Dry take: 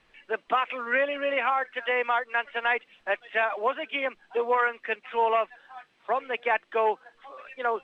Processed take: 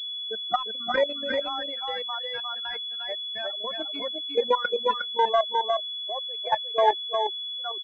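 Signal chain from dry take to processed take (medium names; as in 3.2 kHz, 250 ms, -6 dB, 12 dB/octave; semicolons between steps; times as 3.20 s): expander on every frequency bin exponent 3; high-pass sweep 160 Hz -> 730 Hz, 3.85–7.35 s; level held to a coarse grid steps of 13 dB; multi-tap echo 349/359/364 ms -11/-4/-18 dB; class-D stage that switches slowly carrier 3.4 kHz; trim +7.5 dB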